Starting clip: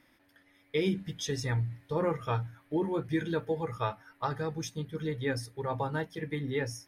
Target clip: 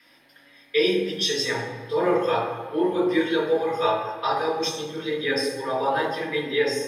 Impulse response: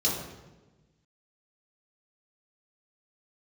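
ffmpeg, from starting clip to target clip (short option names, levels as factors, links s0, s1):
-filter_complex "[0:a]aeval=exprs='val(0)+0.000891*(sin(2*PI*50*n/s)+sin(2*PI*2*50*n/s)/2+sin(2*PI*3*50*n/s)/3+sin(2*PI*4*50*n/s)/4+sin(2*PI*5*50*n/s)/5)':c=same,highpass=540[s0];[1:a]atrim=start_sample=2205,asetrate=31752,aresample=44100[s1];[s0][s1]afir=irnorm=-1:irlink=0"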